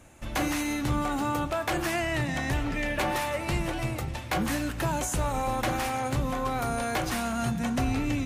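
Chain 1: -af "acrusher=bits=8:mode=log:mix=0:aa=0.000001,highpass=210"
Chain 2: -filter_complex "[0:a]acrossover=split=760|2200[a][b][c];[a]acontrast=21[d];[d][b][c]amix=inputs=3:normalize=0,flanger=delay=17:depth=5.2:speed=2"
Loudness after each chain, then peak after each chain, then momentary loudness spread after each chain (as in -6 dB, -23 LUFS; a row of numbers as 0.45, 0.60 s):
-30.0, -28.5 LUFS; -16.5, -15.0 dBFS; 3, 3 LU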